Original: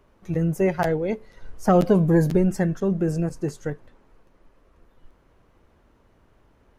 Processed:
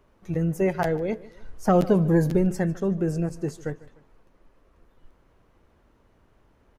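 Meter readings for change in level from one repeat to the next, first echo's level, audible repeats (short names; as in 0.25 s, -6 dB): -7.5 dB, -20.0 dB, 2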